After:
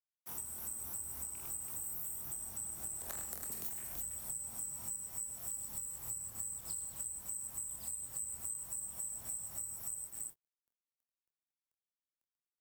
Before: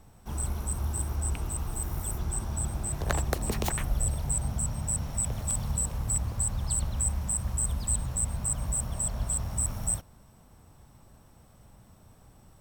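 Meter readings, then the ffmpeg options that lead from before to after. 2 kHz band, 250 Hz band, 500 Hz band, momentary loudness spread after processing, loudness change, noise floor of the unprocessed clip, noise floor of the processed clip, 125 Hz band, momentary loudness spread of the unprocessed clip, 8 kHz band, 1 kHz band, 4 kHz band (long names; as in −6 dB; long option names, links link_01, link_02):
−16.5 dB, −21.5 dB, −19.5 dB, 2 LU, −9.5 dB, −56 dBFS, below −85 dBFS, −28.0 dB, 5 LU, −8.5 dB, −17.5 dB, −13.5 dB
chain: -filter_complex "[0:a]aderivative,aecho=1:1:46|79|102|124|250|331:0.501|0.211|0.447|0.158|0.119|0.376,acrusher=bits=7:mix=0:aa=0.5,acompressor=threshold=-39dB:ratio=2.5,equalizer=frequency=4000:width=0.49:gain=-12.5,acrossover=split=280[link_01][link_02];[link_02]acompressor=threshold=-55dB:ratio=3[link_03];[link_01][link_03]amix=inputs=2:normalize=0,asplit=2[link_04][link_05];[link_05]adelay=26,volume=-7.5dB[link_06];[link_04][link_06]amix=inputs=2:normalize=0,volume=12dB"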